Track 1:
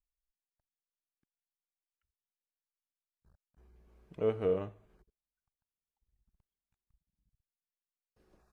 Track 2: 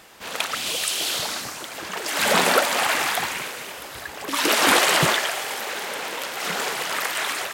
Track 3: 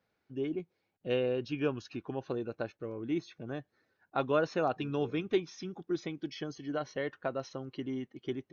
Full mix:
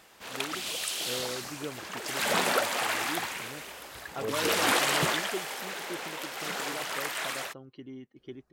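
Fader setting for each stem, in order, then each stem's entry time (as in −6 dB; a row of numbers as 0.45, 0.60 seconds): −5.5, −8.0, −7.0 decibels; 0.00, 0.00, 0.00 seconds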